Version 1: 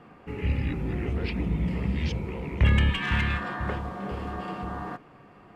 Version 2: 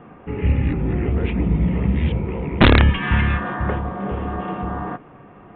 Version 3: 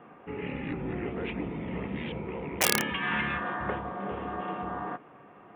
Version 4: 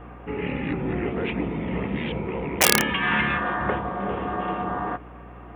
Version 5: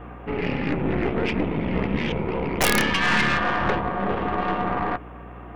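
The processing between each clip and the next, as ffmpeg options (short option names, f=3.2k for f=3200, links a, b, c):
-af "lowpass=f=1.5k:p=1,aresample=8000,aeval=exprs='(mod(4.73*val(0)+1,2)-1)/4.73':c=same,aresample=44100,volume=8.5dB"
-af "afftfilt=real='re*lt(hypot(re,im),1.12)':imag='im*lt(hypot(re,im),1.12)':win_size=1024:overlap=0.75,aeval=exprs='(mod(2.37*val(0)+1,2)-1)/2.37':c=same,highpass=f=370:p=1,volume=-5dB"
-af "aeval=exprs='val(0)+0.00316*(sin(2*PI*60*n/s)+sin(2*PI*2*60*n/s)/2+sin(2*PI*3*60*n/s)/3+sin(2*PI*4*60*n/s)/4+sin(2*PI*5*60*n/s)/5)':c=same,volume=7dB"
-af "aeval=exprs='(tanh(12.6*val(0)+0.75)-tanh(0.75))/12.6':c=same,volume=7dB"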